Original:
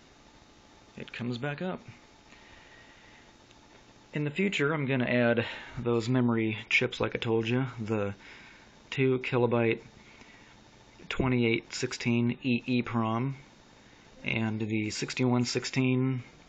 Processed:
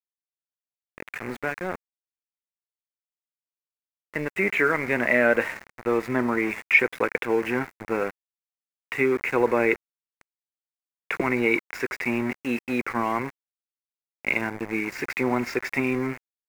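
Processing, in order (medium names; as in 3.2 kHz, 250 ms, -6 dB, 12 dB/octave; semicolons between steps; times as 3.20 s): band-pass 300–5500 Hz; small samples zeroed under -37 dBFS; resonant high shelf 2.6 kHz -7.5 dB, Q 3; trim +6 dB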